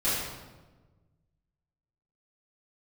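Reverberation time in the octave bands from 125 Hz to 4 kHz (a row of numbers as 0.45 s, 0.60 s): 2.1 s, 1.6 s, 1.4 s, 1.1 s, 0.95 s, 0.85 s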